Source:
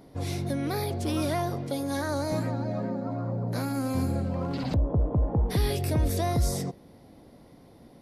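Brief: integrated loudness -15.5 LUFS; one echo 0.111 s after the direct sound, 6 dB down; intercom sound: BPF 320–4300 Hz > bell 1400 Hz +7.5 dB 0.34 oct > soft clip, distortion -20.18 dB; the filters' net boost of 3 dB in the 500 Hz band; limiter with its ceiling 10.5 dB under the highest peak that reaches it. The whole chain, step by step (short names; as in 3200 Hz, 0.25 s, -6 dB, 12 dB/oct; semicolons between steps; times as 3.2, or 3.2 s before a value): bell 500 Hz +4.5 dB; limiter -24.5 dBFS; BPF 320–4300 Hz; bell 1400 Hz +7.5 dB 0.34 oct; echo 0.111 s -6 dB; soft clip -27 dBFS; gain +21 dB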